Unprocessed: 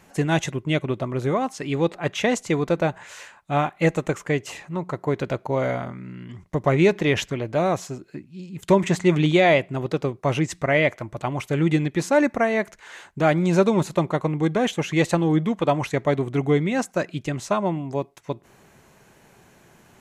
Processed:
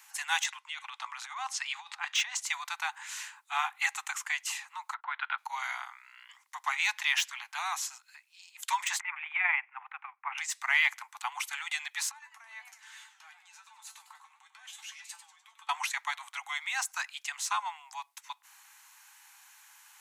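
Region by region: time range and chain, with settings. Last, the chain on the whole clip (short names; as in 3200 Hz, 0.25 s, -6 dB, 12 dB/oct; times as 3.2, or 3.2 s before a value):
0.43–2.41 negative-ratio compressor -24 dBFS, ratio -0.5 + BPF 610–7300 Hz
4.94–5.38 steep low-pass 3600 Hz 48 dB/oct + gate -42 dBFS, range -22 dB + bell 1400 Hz +9.5 dB 0.36 oct
9–10.38 elliptic band-pass 740–2400 Hz + AM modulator 22 Hz, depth 30%
12.11–15.69 compressor 12:1, threshold -30 dBFS + resonator 220 Hz, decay 0.17 s, mix 80% + warbling echo 0.1 s, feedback 45%, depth 201 cents, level -10.5 dB
whole clip: steep high-pass 800 Hz 96 dB/oct; de-esser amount 65%; tilt +3 dB/oct; gain -4 dB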